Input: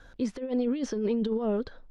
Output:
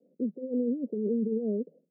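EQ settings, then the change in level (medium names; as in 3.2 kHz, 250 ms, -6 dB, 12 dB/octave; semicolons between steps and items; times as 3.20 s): rippled Chebyshev high-pass 160 Hz, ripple 3 dB; steep low-pass 530 Hz 48 dB/octave; 0.0 dB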